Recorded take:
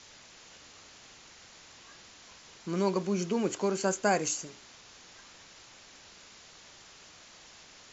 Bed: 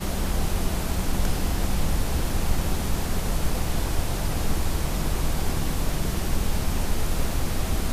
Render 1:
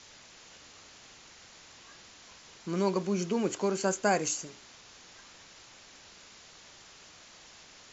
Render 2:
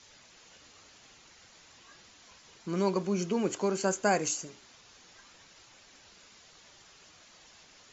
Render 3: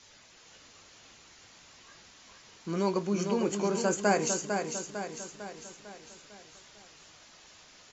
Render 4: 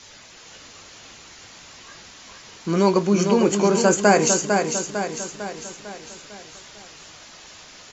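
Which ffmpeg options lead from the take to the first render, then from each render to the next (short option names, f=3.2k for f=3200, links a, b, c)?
-af anull
-af "afftdn=nr=6:nf=-54"
-filter_complex "[0:a]asplit=2[a][b];[b]adelay=19,volume=-12dB[c];[a][c]amix=inputs=2:normalize=0,aecho=1:1:451|902|1353|1804|2255|2706:0.501|0.261|0.136|0.0705|0.0366|0.0191"
-af "volume=11dB,alimiter=limit=-3dB:level=0:latency=1"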